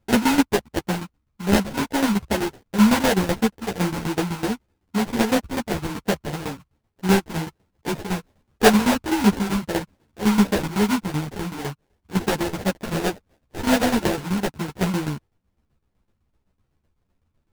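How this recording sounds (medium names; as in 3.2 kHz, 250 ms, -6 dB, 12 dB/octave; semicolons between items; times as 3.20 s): phasing stages 12, 2.7 Hz, lowest notch 610–1500 Hz; aliases and images of a low sample rate 1.2 kHz, jitter 20%; tremolo saw down 7.9 Hz, depth 80%; a shimmering, thickened sound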